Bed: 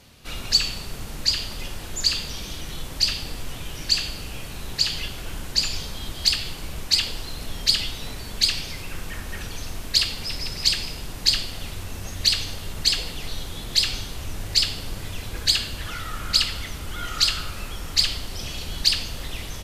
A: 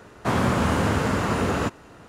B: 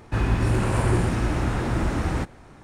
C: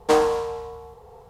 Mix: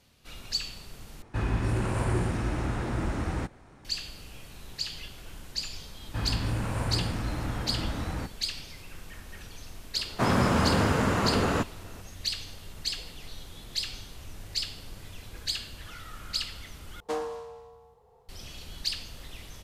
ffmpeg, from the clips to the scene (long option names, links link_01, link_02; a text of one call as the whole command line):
ffmpeg -i bed.wav -i cue0.wav -i cue1.wav -i cue2.wav -filter_complex "[2:a]asplit=2[link_01][link_02];[0:a]volume=-11.5dB[link_03];[link_02]bandreject=frequency=370:width=6[link_04];[link_03]asplit=3[link_05][link_06][link_07];[link_05]atrim=end=1.224[link_08];[link_01]atrim=end=2.63,asetpts=PTS-STARTPTS,volume=-6dB[link_09];[link_06]atrim=start=3.846:end=17.004[link_10];[3:a]atrim=end=1.29,asetpts=PTS-STARTPTS,volume=-14dB[link_11];[link_07]atrim=start=18.286[link_12];[link_04]atrim=end=2.63,asetpts=PTS-STARTPTS,volume=-8dB,afade=type=in:duration=0.004:curve=hsin,afade=type=out:start_time=2.626:duration=0.004:curve=hsin,adelay=6020[link_13];[1:a]atrim=end=2.08,asetpts=PTS-STARTPTS,volume=-2dB,afade=type=in:duration=0.004:curve=hsin,afade=type=out:start_time=2.076:duration=0.004:curve=hsin,adelay=438354S[link_14];[link_08][link_09]acrossfade=duration=0.004:curve1=hsin:curve2=hsin[link_15];[link_15][link_10]acrossfade=duration=0.004:curve1=hsin:curve2=hsin[link_16];[link_16][link_11]acrossfade=duration=0.004:curve1=hsin:curve2=hsin[link_17];[link_17][link_12]acrossfade=duration=0.004:curve1=hsin:curve2=hsin[link_18];[link_18][link_13][link_14]amix=inputs=3:normalize=0" out.wav